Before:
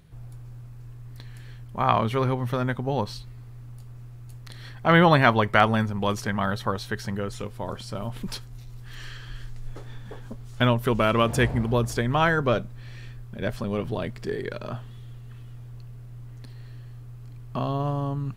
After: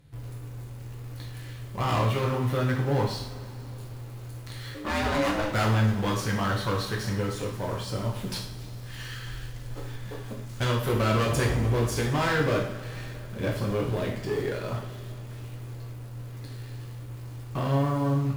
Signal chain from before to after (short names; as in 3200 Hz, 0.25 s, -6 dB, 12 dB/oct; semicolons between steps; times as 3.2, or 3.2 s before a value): tube stage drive 25 dB, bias 0.3; in parallel at -5.5 dB: bit-crush 7-bit; 4.74–5.51 on the sum: ring modulator 420 Hz; two-slope reverb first 0.57 s, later 4 s, from -20 dB, DRR -2.5 dB; gain -4.5 dB